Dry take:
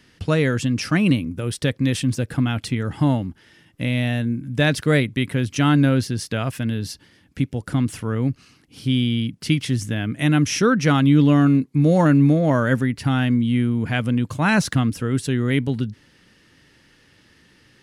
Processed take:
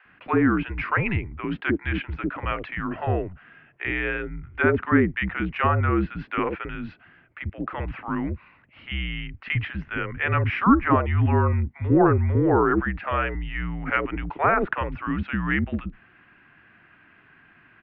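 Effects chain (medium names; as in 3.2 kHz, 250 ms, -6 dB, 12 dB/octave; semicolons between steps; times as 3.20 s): mistuned SSB -190 Hz 370–2600 Hz; low-pass that closes with the level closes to 1.4 kHz, closed at -19 dBFS; bands offset in time highs, lows 50 ms, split 540 Hz; trim +4.5 dB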